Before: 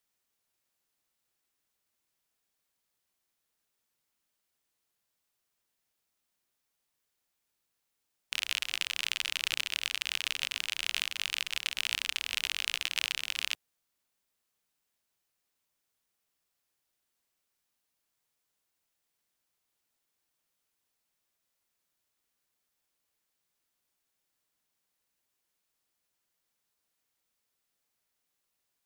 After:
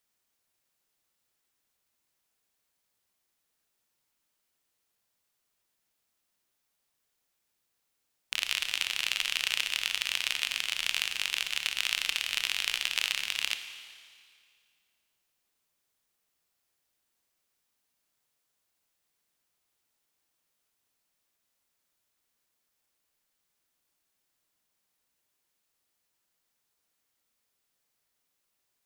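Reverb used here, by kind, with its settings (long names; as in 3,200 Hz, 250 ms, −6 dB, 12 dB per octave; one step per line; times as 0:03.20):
four-comb reverb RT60 2.1 s, combs from 25 ms, DRR 8.5 dB
level +2 dB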